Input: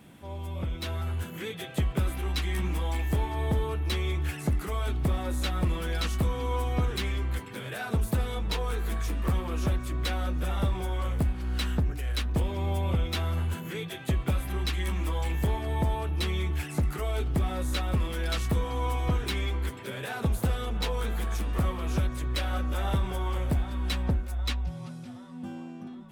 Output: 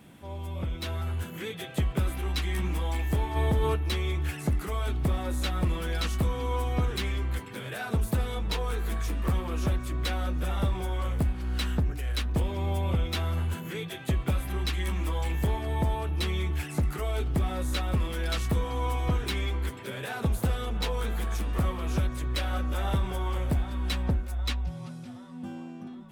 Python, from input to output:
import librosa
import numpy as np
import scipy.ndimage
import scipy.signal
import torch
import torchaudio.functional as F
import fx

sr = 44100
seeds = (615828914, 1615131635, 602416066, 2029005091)

y = fx.env_flatten(x, sr, amount_pct=70, at=(3.35, 3.75), fade=0.02)